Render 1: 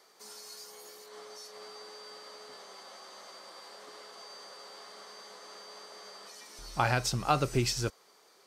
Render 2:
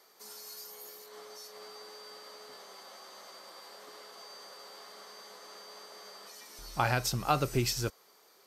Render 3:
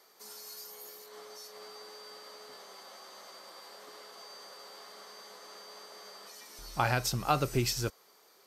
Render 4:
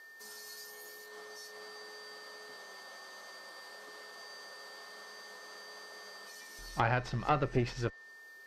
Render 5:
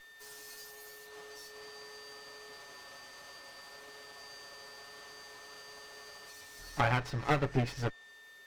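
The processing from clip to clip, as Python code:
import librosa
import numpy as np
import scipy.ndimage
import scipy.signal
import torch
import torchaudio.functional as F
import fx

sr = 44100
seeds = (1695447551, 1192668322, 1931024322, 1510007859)

y1 = fx.peak_eq(x, sr, hz=13000.0, db=14.5, octaves=0.21)
y1 = F.gain(torch.from_numpy(y1), -1.0).numpy()
y2 = y1
y3 = y2 + 10.0 ** (-50.0 / 20.0) * np.sin(2.0 * np.pi * 1800.0 * np.arange(len(y2)) / sr)
y3 = fx.tube_stage(y3, sr, drive_db=21.0, bias=0.7)
y3 = fx.env_lowpass_down(y3, sr, base_hz=2400.0, full_db=-30.5)
y3 = F.gain(torch.from_numpy(y3), 2.5).numpy()
y4 = fx.lower_of_two(y3, sr, delay_ms=7.1)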